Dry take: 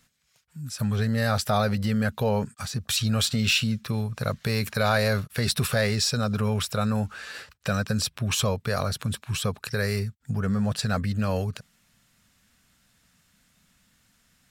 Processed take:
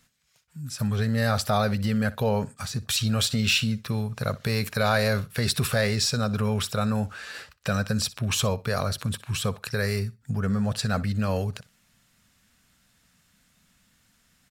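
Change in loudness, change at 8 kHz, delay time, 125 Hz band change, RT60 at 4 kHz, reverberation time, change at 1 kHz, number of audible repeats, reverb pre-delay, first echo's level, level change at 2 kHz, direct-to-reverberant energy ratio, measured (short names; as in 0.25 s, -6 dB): 0.0 dB, 0.0 dB, 61 ms, 0.0 dB, none, none, 0.0 dB, 2, none, -19.0 dB, 0.0 dB, none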